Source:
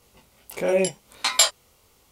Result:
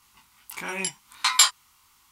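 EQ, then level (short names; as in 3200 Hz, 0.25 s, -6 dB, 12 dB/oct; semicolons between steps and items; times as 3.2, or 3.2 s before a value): EQ curve 320 Hz 0 dB, 530 Hz -16 dB, 990 Hz +14 dB, 2400 Hz +10 dB; -9.5 dB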